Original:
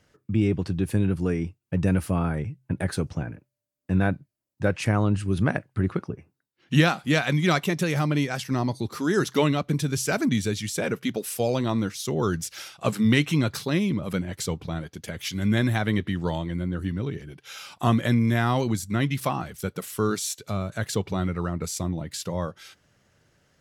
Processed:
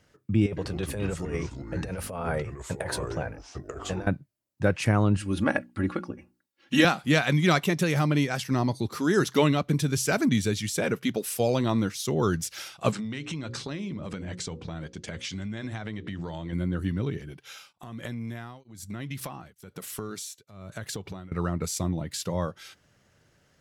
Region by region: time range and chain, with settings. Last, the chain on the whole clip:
0.46–4.07 s: resonant low shelf 390 Hz -7.5 dB, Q 3 + compressor with a negative ratio -30 dBFS, ratio -0.5 + ever faster or slower copies 104 ms, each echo -5 st, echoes 2, each echo -6 dB
5.17–6.85 s: bass shelf 200 Hz -6 dB + hum notches 60/120/180/240/300/360 Hz + comb 3.6 ms, depth 76%
12.92–16.53 s: steep low-pass 8.5 kHz + hum notches 60/120/180/240/300/360/420/480/540 Hz + compression 12:1, threshold -30 dBFS
17.28–21.32 s: compression 12:1, threshold -30 dBFS + tremolo of two beating tones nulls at 1.1 Hz
whole clip: none

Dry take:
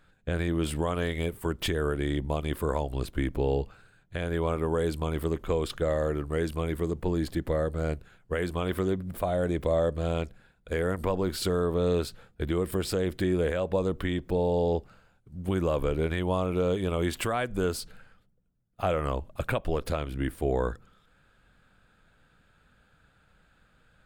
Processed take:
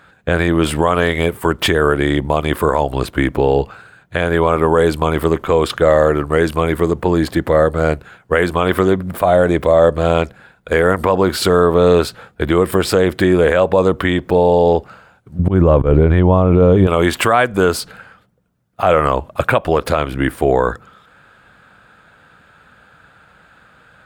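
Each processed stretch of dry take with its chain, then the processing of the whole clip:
15.39–16.87 s: tilt EQ -4 dB/octave + slow attack 148 ms
whole clip: high-pass 74 Hz; peaking EQ 1.1 kHz +8 dB 2.4 oct; loudness maximiser +12.5 dB; trim -1 dB

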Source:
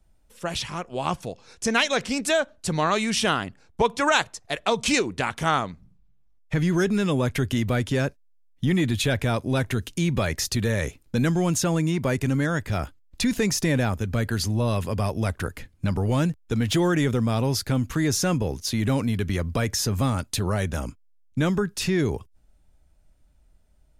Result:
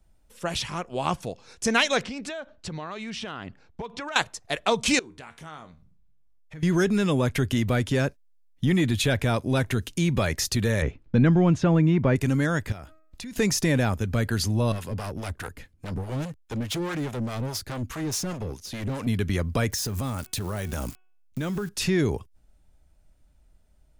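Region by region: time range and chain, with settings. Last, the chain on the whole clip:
2.03–4.16 s: low-pass 4.4 kHz + overload inside the chain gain 11.5 dB + compression 8:1, threshold -31 dBFS
4.99–6.63 s: feedback comb 77 Hz, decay 0.25 s + compression 2:1, threshold -50 dBFS
10.82–12.16 s: low-pass 2.6 kHz + bass shelf 360 Hz +5 dB
12.72–13.36 s: de-hum 315.8 Hz, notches 8 + compression 4:1, threshold -38 dBFS
14.72–19.07 s: hard clipper -24.5 dBFS + harmonic tremolo 4.8 Hz, crossover 480 Hz
19.72–21.69 s: zero-crossing glitches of -29.5 dBFS + de-hum 370.1 Hz, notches 9 + compression 10:1, threshold -25 dBFS
whole clip: none

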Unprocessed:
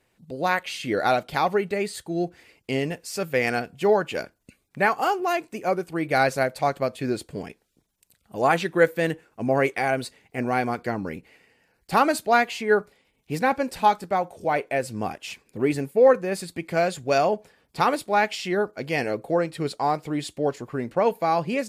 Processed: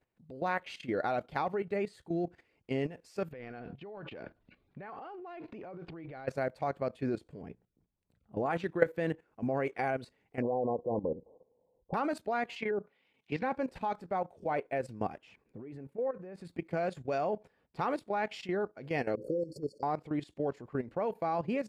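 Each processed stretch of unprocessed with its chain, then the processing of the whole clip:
3.32–6.28 s: Chebyshev low-pass 4 kHz, order 3 + compression 3:1, threshold -35 dBFS + transient shaper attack -1 dB, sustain +12 dB
7.41–8.46 s: high-pass 84 Hz 6 dB/octave + tilt EQ -3 dB/octave + hum notches 60/120/180 Hz
10.42–11.94 s: brick-wall FIR low-pass 1.1 kHz + peaking EQ 510 Hz +14.5 dB 0.47 oct
12.56–13.43 s: high-pass 140 Hz + low-pass that closes with the level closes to 470 Hz, closed at -17 dBFS + peaking EQ 3 kHz +12 dB 2.1 oct
15.18–16.45 s: treble shelf 2.8 kHz -11.5 dB + compression 2.5:1, threshold -32 dBFS
19.15–19.83 s: brick-wall FIR band-stop 590–4300 Hz + bass shelf 230 Hz -9 dB + swell ahead of each attack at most 72 dB/s
whole clip: low-pass 1.5 kHz 6 dB/octave; level held to a coarse grid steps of 14 dB; trim -3 dB

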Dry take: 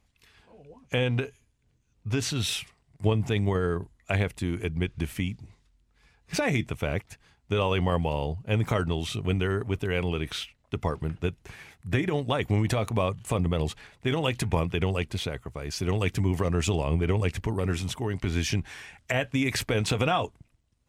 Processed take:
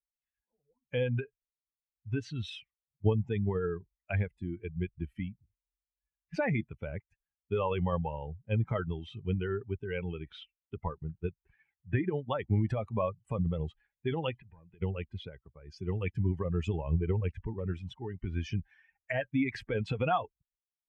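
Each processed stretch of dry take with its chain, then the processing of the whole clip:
14.38–14.82 s: low-pass 3.3 kHz 24 dB/octave + hard clipper -19.5 dBFS + compression 16:1, threshold -34 dBFS
whole clip: expander on every frequency bin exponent 2; low-pass 2.2 kHz 12 dB/octave

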